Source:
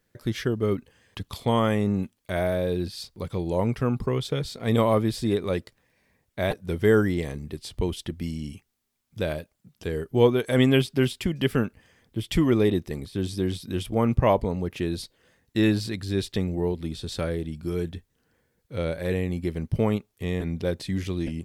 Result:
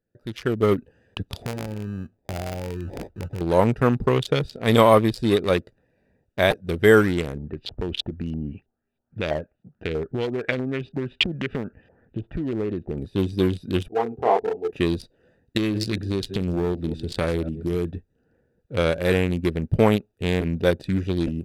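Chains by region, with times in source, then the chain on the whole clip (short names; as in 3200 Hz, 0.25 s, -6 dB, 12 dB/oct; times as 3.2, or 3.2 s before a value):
1.42–3.41 bell 84 Hz +8 dB 1.4 oct + compressor 5:1, threshold -32 dBFS + sample-rate reducer 1400 Hz
7.37–12.98 compressor 8:1, threshold -28 dBFS + LFO low-pass saw up 3.1 Hz 740–3800 Hz
13.88–14.73 double band-pass 570 Hz, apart 0.75 oct + doubler 25 ms -3.5 dB
15.57–17.92 reverse delay 0.137 s, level -14 dB + compressor 16:1, threshold -24 dBFS
whole clip: Wiener smoothing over 41 samples; low shelf 460 Hz -9.5 dB; AGC gain up to 13 dB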